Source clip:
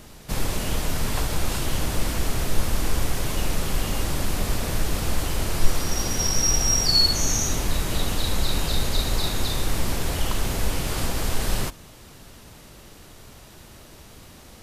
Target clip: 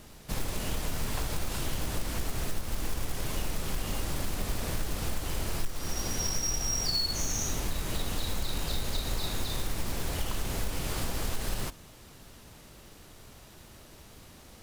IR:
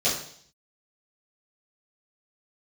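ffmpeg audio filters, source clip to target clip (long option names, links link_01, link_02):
-af "acrusher=bits=4:mode=log:mix=0:aa=0.000001,acompressor=threshold=-20dB:ratio=6,volume=-5.5dB"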